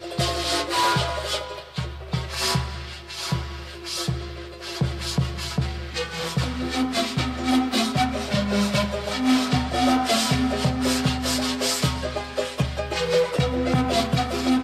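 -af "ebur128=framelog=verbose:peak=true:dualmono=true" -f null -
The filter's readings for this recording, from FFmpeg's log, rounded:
Integrated loudness:
  I:         -21.0 LUFS
  Threshold: -31.1 LUFS
Loudness range:
  LRA:         6.2 LU
  Threshold: -41.3 LUFS
  LRA low:   -25.2 LUFS
  LRA high:  -19.0 LUFS
True peak:
  Peak:      -11.7 dBFS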